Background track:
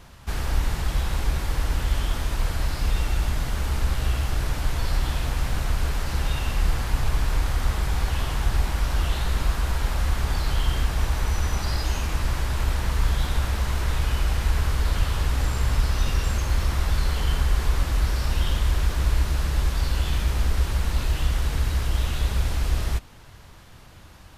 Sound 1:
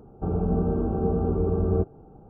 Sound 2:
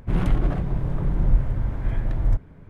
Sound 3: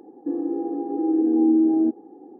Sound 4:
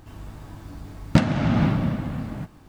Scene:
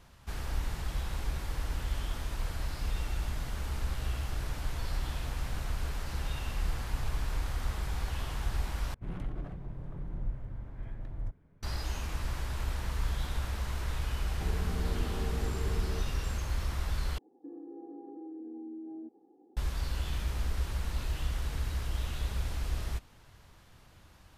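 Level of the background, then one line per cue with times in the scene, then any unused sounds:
background track -10 dB
8.94 s: replace with 2 -16.5 dB
14.19 s: add 1 -3 dB + compression, threshold -33 dBFS
17.18 s: replace with 3 -17 dB + peak limiter -21.5 dBFS
not used: 4

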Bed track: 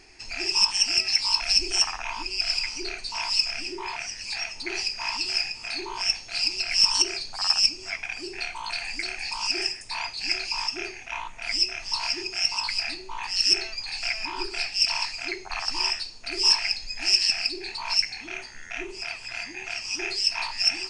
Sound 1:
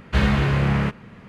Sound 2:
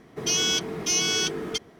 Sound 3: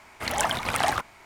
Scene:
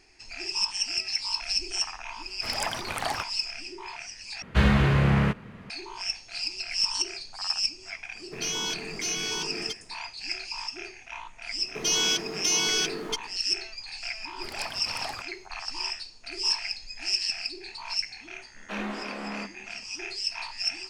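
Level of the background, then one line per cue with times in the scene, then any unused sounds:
bed track -6.5 dB
2.22 s: add 3 -6 dB
4.42 s: replace with 1 -1.5 dB
8.15 s: add 2 -7 dB
11.58 s: add 2 -1 dB + bass shelf 180 Hz -9.5 dB
14.21 s: add 3 -12.5 dB
18.56 s: add 1 -7.5 dB + rippled Chebyshev high-pass 190 Hz, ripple 6 dB

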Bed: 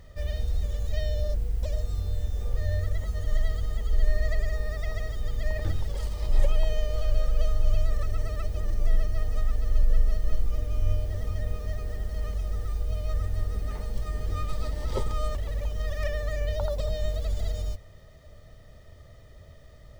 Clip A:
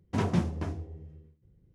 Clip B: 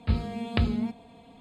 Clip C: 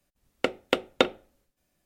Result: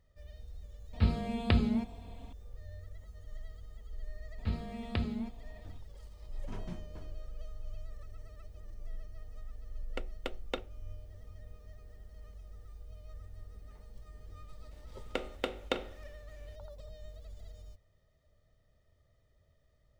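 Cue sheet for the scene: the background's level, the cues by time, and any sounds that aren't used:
bed -20 dB
0.93 s: add B -2 dB
4.38 s: add B -8.5 dB
6.34 s: add A -17.5 dB
9.53 s: add C -15.5 dB
14.71 s: add C -12.5 dB + spectral levelling over time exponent 0.6

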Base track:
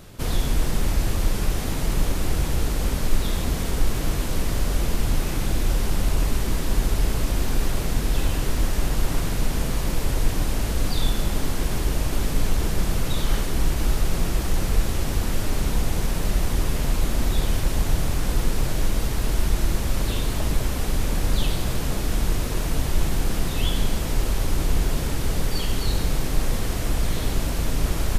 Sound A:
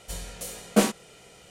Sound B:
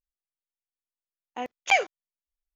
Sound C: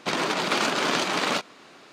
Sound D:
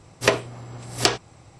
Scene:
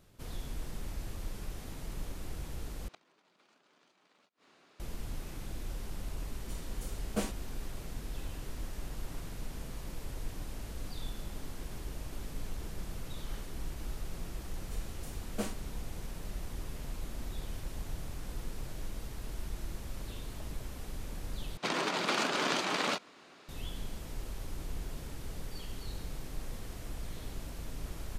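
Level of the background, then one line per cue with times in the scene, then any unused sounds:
base track -18 dB
2.88 s: replace with C -14.5 dB + inverted gate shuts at -21 dBFS, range -30 dB
6.40 s: add A -14 dB
14.62 s: add A -16.5 dB
21.57 s: replace with C -7 dB
not used: B, D

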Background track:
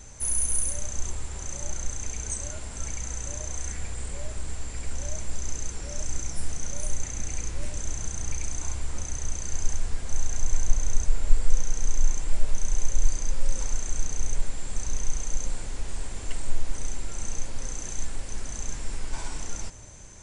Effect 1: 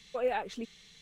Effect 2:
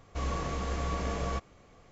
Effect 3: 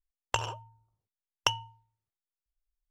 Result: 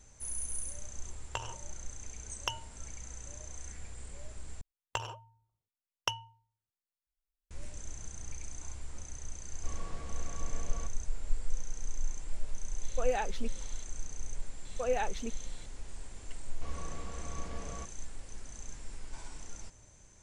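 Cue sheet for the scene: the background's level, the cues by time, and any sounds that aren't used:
background track -12 dB
1.01 s: add 3 -8.5 dB + spectral gate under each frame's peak -45 dB strong
4.61 s: replace with 3 -6 dB
9.48 s: add 2 -13 dB
12.83 s: add 1 -1 dB
14.65 s: add 1 -1 dB
16.46 s: add 2 -11 dB

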